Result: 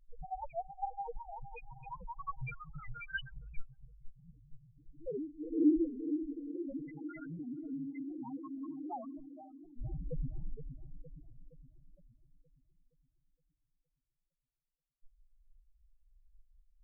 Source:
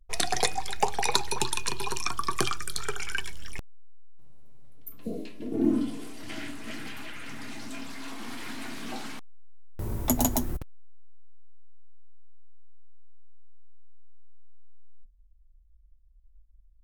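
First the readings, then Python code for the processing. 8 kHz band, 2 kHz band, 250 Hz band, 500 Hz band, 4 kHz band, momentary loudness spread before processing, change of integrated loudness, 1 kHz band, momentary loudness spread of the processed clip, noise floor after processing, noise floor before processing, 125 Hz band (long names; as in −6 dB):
below −40 dB, −12.0 dB, −3.5 dB, −7.5 dB, below −25 dB, 15 LU, −8.5 dB, −10.5 dB, 17 LU, below −85 dBFS, −57 dBFS, −8.0 dB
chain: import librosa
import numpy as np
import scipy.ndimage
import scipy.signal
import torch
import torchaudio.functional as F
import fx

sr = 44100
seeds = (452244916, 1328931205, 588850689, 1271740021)

p1 = fx.lower_of_two(x, sr, delay_ms=6.4)
p2 = fx.spec_gate(p1, sr, threshold_db=-20, keep='strong')
p3 = fx.lowpass(p2, sr, hz=3000.0, slope=6)
p4 = fx.dynamic_eq(p3, sr, hz=250.0, q=4.4, threshold_db=-45.0, ratio=4.0, max_db=-3)
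p5 = fx.rider(p4, sr, range_db=10, speed_s=2.0)
p6 = fx.spec_topn(p5, sr, count=1)
p7 = p6 + fx.echo_bbd(p6, sr, ms=466, stages=2048, feedback_pct=51, wet_db=-9.0, dry=0)
p8 = fx.record_warp(p7, sr, rpm=78.0, depth_cents=250.0)
y = F.gain(torch.from_numpy(p8), 4.0).numpy()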